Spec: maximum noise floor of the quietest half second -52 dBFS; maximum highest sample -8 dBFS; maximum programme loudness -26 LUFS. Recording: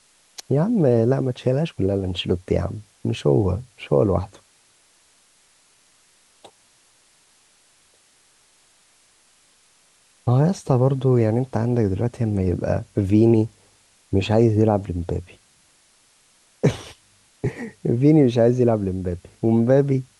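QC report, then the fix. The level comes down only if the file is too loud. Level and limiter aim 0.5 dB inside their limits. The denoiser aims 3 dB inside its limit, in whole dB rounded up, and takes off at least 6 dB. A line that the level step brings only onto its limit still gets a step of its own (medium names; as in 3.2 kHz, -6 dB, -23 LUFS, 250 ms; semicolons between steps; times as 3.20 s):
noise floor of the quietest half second -58 dBFS: pass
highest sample -5.0 dBFS: fail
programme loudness -21.0 LUFS: fail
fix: trim -5.5 dB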